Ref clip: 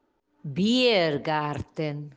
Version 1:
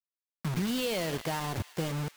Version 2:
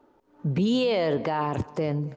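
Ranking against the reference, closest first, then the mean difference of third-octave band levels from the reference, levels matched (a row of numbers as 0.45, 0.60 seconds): 2, 1; 4.0, 13.0 decibels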